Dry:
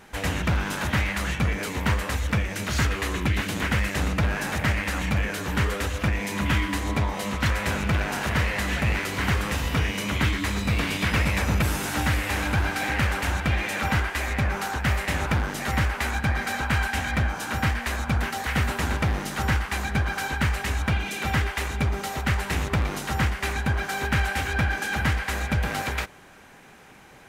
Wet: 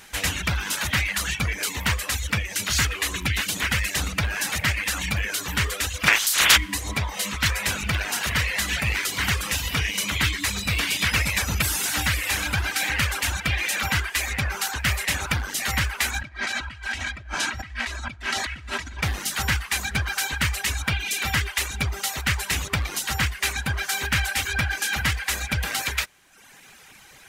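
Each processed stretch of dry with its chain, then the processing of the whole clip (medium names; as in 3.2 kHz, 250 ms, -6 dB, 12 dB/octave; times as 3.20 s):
6.06–6.56 s: spectral peaks clipped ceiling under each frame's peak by 28 dB + peaking EQ 1.5 kHz +6 dB 1.3 oct
16.21–19.03 s: comb 3.1 ms, depth 43% + compressor with a negative ratio -31 dBFS + distance through air 85 m
whole clip: tilt shelf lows -9 dB, about 1.5 kHz; reverb removal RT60 0.89 s; bass shelf 140 Hz +6.5 dB; trim +2.5 dB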